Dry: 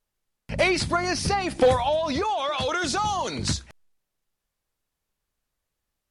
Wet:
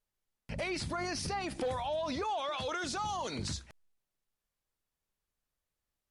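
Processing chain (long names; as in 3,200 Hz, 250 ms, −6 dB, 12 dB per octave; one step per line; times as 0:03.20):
brickwall limiter −21 dBFS, peak gain reduction 10.5 dB
level −7 dB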